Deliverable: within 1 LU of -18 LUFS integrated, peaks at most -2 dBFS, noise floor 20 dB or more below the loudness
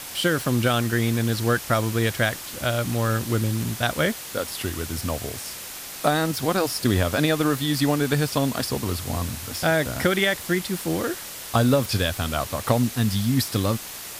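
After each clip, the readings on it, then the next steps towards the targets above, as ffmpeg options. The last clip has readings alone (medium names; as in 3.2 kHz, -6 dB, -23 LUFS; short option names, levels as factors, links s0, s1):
noise floor -37 dBFS; noise floor target -44 dBFS; loudness -24.0 LUFS; peak level -6.0 dBFS; loudness target -18.0 LUFS
-> -af "afftdn=nr=7:nf=-37"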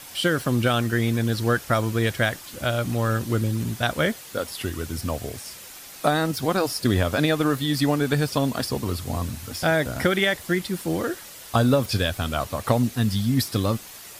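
noise floor -42 dBFS; noise floor target -44 dBFS
-> -af "afftdn=nr=6:nf=-42"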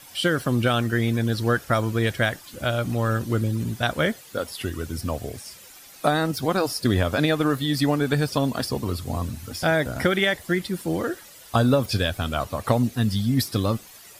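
noise floor -47 dBFS; loudness -24.0 LUFS; peak level -6.5 dBFS; loudness target -18.0 LUFS
-> -af "volume=2,alimiter=limit=0.794:level=0:latency=1"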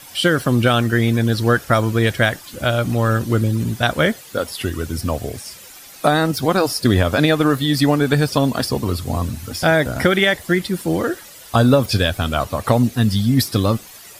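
loudness -18.0 LUFS; peak level -2.0 dBFS; noise floor -41 dBFS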